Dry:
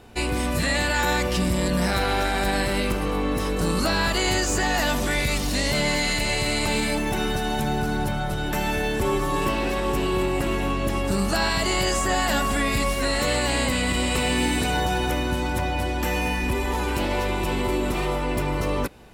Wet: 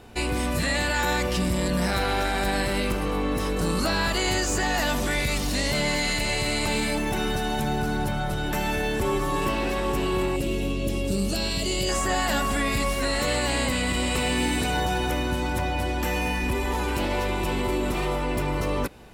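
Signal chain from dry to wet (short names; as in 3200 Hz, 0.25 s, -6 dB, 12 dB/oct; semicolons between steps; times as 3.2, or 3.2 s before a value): 10.36–11.89 band shelf 1200 Hz -13 dB; in parallel at -3 dB: limiter -22.5 dBFS, peak gain reduction 9.5 dB; on the sum: gain -4 dB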